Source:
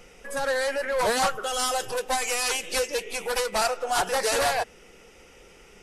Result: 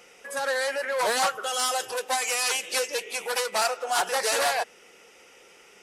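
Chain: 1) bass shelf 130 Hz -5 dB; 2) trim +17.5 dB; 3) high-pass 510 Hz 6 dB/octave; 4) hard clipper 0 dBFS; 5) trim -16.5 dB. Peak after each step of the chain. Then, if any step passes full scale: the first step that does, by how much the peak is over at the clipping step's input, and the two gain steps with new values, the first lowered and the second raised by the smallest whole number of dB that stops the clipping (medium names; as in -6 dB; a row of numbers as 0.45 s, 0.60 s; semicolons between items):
-13.0 dBFS, +4.5 dBFS, +5.0 dBFS, 0.0 dBFS, -16.5 dBFS; step 2, 5.0 dB; step 2 +12.5 dB, step 5 -11.5 dB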